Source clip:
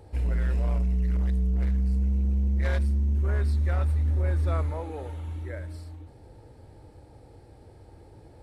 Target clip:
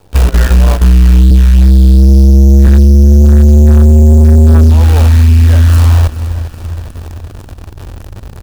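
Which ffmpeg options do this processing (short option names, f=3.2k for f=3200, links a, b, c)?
-filter_complex "[0:a]asettb=1/sr,asplit=3[a][b][c];[a]atrim=end=1.304[d];[b]atrim=start=1.3:end=2.67,asetpts=PTS-STARTPTS,afade=t=in:d=0.004:c=qsin,afade=t=out:st=1.366:d=0.004:c=qsin,highpass=40[e];[c]atrim=start=2.666[f];[d][e]acrossfade=d=0.004:c1=hsin:c2=qsin[g];[g][f]acrossfade=d=0.004:c1=qsin:c2=hsin,bandreject=f=60:t=h:w=6,bandreject=f=120:t=h:w=6,bandreject=f=180:t=h:w=6,bandreject=f=240:t=h:w=6,asubboost=boost=9.5:cutoff=110,acrusher=bits=7:dc=4:mix=0:aa=0.000001,agate=range=-20dB:threshold=-28dB:ratio=16:detection=peak,asoftclip=type=tanh:threshold=-17.5dB,bandreject=f=2.1k:w=8.6,aecho=1:1:404|808|1212|1616:0.0794|0.0461|0.0267|0.0155,acompressor=threshold=-32dB:ratio=5,apsyclip=31dB,volume=-2dB"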